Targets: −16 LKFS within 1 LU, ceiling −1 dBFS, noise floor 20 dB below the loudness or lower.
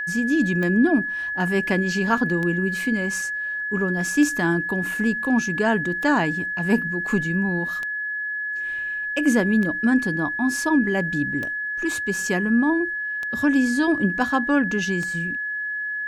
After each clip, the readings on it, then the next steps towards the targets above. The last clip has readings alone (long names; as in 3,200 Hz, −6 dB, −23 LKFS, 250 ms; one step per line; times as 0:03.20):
number of clicks 9; interfering tone 1,700 Hz; level of the tone −25 dBFS; integrated loudness −22.0 LKFS; sample peak −7.0 dBFS; target loudness −16.0 LKFS
→ click removal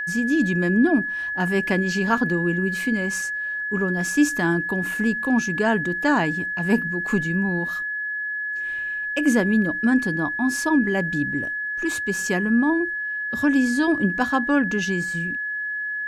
number of clicks 0; interfering tone 1,700 Hz; level of the tone −25 dBFS
→ notch filter 1,700 Hz, Q 30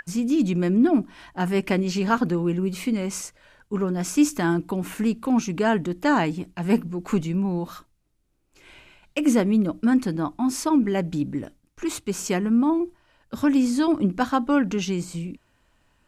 interfering tone none found; integrated loudness −23.5 LKFS; sample peak −7.5 dBFS; target loudness −16.0 LKFS
→ level +7.5 dB
brickwall limiter −1 dBFS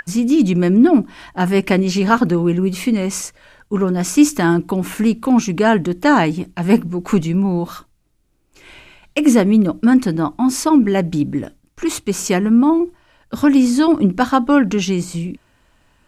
integrated loudness −16.0 LKFS; sample peak −1.0 dBFS; background noise floor −58 dBFS